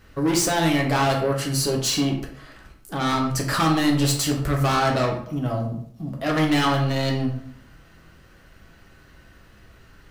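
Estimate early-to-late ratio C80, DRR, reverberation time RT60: 10.0 dB, 0.0 dB, 0.60 s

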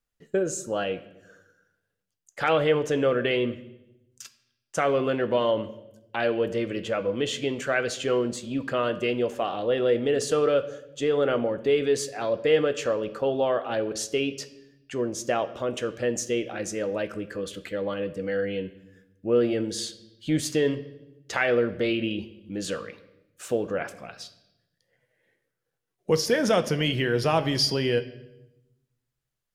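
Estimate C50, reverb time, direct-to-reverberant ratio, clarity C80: 15.0 dB, 0.90 s, 10.0 dB, 17.0 dB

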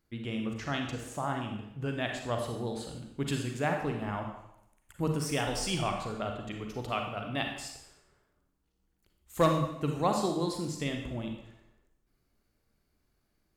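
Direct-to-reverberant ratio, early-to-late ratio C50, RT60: 2.5 dB, 4.0 dB, 0.80 s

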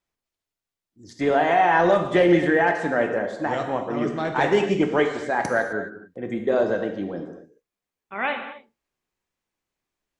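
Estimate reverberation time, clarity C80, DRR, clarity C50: not exponential, 8.0 dB, 4.5 dB, 6.5 dB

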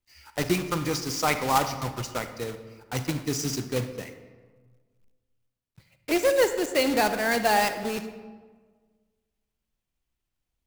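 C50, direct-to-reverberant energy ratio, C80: 10.0 dB, 9.0 dB, 11.5 dB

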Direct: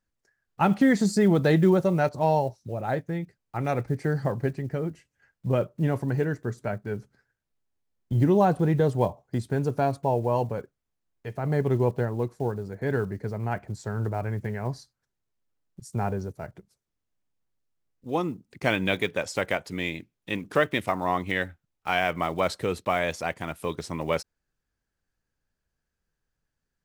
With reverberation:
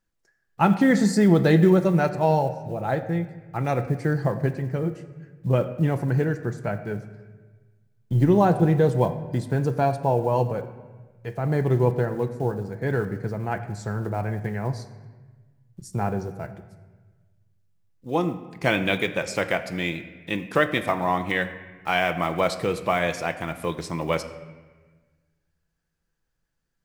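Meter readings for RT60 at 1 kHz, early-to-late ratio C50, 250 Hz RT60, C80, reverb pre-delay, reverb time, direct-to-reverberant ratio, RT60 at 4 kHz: 1.3 s, 12.0 dB, 1.6 s, 13.0 dB, 6 ms, 1.4 s, 8.0 dB, 1.0 s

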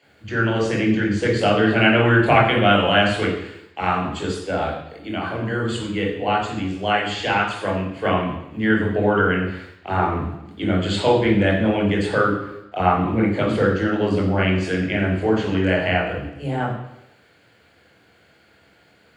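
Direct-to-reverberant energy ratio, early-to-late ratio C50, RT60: -3.0 dB, 4.5 dB, 0.85 s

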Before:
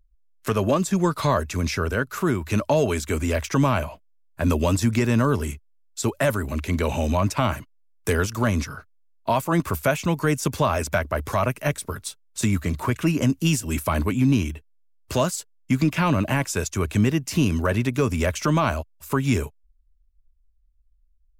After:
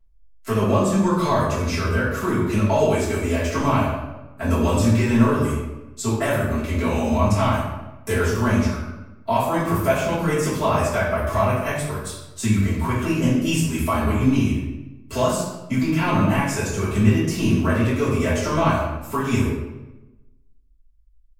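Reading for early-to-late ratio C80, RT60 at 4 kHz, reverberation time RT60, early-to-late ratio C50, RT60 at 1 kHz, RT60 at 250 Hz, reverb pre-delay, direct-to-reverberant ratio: 4.0 dB, 0.75 s, 1.0 s, 1.5 dB, 1.0 s, 1.2 s, 3 ms, -11.5 dB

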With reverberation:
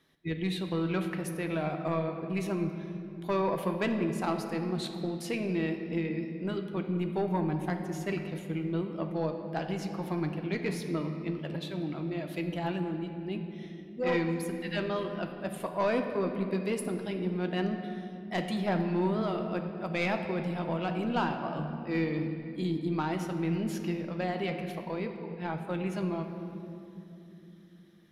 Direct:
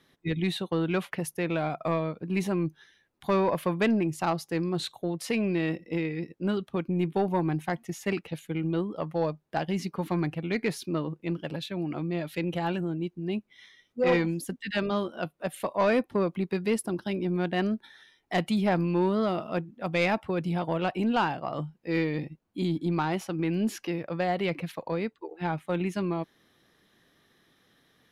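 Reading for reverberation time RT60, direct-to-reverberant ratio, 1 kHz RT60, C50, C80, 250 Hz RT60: 2.9 s, 4.5 dB, 2.4 s, 6.5 dB, 7.5 dB, 5.0 s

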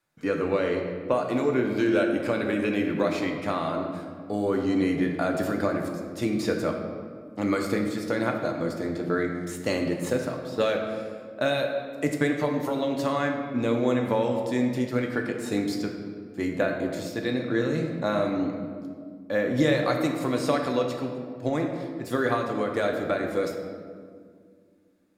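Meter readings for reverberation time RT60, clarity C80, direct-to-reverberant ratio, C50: 2.0 s, 6.0 dB, 2.0 dB, 4.5 dB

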